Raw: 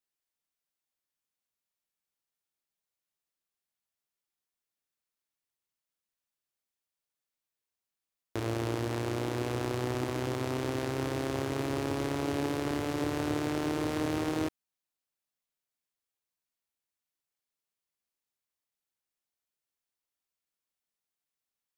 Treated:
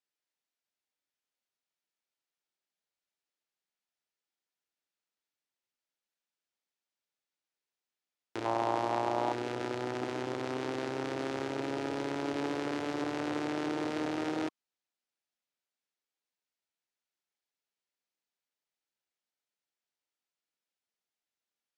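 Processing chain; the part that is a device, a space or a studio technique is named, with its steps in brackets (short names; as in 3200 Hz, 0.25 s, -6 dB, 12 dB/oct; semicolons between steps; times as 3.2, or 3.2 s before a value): public-address speaker with an overloaded transformer (core saturation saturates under 680 Hz; BPF 200–6200 Hz); notch 1100 Hz, Q 11; 8.45–9.33 band shelf 820 Hz +11.5 dB 1.1 oct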